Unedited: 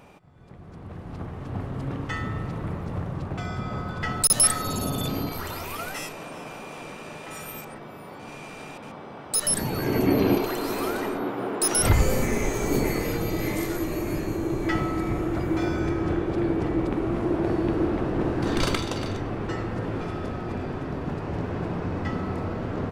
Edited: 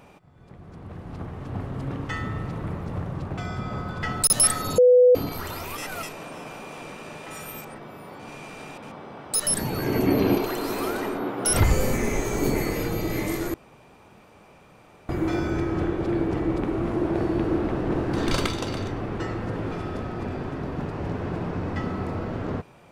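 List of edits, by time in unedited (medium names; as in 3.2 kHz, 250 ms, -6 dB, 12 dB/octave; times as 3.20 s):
4.78–5.15 s: bleep 497 Hz -11 dBFS
5.78–6.03 s: reverse
11.45–11.74 s: delete
13.83–15.38 s: room tone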